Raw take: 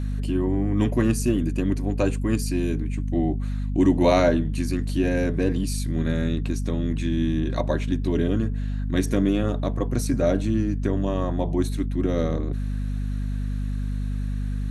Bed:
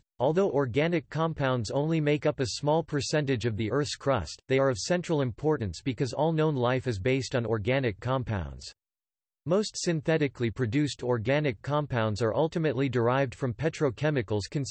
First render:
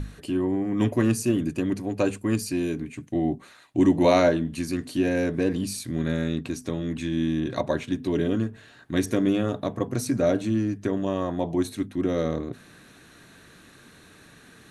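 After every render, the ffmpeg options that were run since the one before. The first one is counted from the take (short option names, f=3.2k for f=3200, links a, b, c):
-af "bandreject=f=50:t=h:w=6,bandreject=f=100:t=h:w=6,bandreject=f=150:t=h:w=6,bandreject=f=200:t=h:w=6,bandreject=f=250:t=h:w=6"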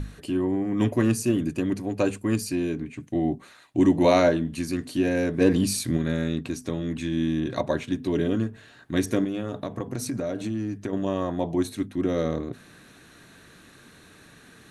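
-filter_complex "[0:a]asettb=1/sr,asplit=3[a][b][c];[a]atrim=end=2.554[d];[b]atrim=start=2.55:end=3,asetpts=PTS-STARTPTS,afade=t=in:d=0.004:c=qsin,afade=t=out:st=0.446:d=0.004:c=qsin,highshelf=f=7.3k:g=-11[e];[c]atrim=start=2.996[f];[d][e]acrossfade=d=0.004:c1=hsin:c2=qsin[g];[g][f]acrossfade=d=0.004:c1=qsin:c2=hsin,asplit=3[h][i][j];[h]afade=t=out:st=5.4:d=0.02[k];[i]acontrast=39,afade=t=in:st=5.4:d=0.02,afade=t=out:st=5.96:d=0.02[l];[j]afade=t=in:st=5.96:d=0.02[m];[k][l][m]amix=inputs=3:normalize=0,asettb=1/sr,asplit=3[n][o][p];[n]atrim=end=9.244[q];[o]atrim=start=9.24:end=10.93,asetpts=PTS-STARTPTS,afade=t=in:d=0.004:c=qsin,afade=t=out:st=1.686:d=0.004:c=qsin,acompressor=threshold=-25dB:ratio=6:attack=3.2:release=140:knee=1:detection=peak[r];[p]atrim=start=10.926[s];[q][r]acrossfade=d=0.004:c1=hsin:c2=qsin[t];[t][s]acrossfade=d=0.004:c1=qsin:c2=hsin"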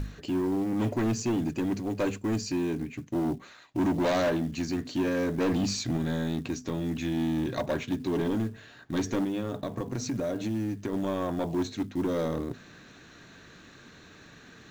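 -af "aresample=16000,asoftclip=type=tanh:threshold=-22.5dB,aresample=44100,acrusher=bits=7:mode=log:mix=0:aa=0.000001"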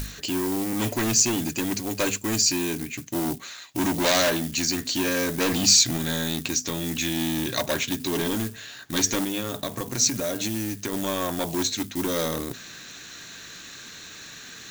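-af "crystalizer=i=9.5:c=0"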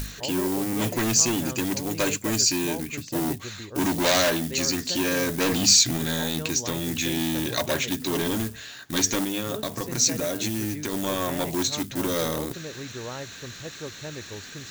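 -filter_complex "[1:a]volume=-11dB[a];[0:a][a]amix=inputs=2:normalize=0"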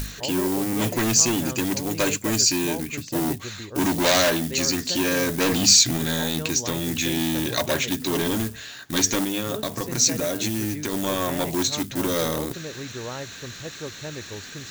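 -af "volume=2dB"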